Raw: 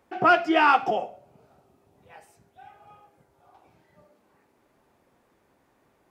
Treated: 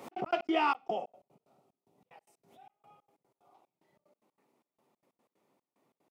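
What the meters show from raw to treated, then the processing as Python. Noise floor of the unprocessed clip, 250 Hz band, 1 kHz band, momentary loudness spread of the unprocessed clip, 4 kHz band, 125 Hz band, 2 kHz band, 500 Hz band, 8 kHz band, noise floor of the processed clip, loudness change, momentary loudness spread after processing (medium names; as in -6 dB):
-67 dBFS, -8.0 dB, -11.5 dB, 11 LU, -9.0 dB, -11.0 dB, -15.0 dB, -9.0 dB, no reading, under -85 dBFS, -11.0 dB, 10 LU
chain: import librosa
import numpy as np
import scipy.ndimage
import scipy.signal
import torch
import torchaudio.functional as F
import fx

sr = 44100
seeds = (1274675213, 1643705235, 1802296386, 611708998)

y = scipy.signal.sosfilt(scipy.signal.butter(4, 140.0, 'highpass', fs=sr, output='sos'), x)
y = fx.peak_eq(y, sr, hz=1600.0, db=-12.5, octaves=0.29)
y = fx.step_gate(y, sr, bpm=185, pattern='x.x.x.xxx..x', floor_db=-60.0, edge_ms=4.5)
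y = fx.pre_swell(y, sr, db_per_s=84.0)
y = F.gain(torch.from_numpy(y), -8.0).numpy()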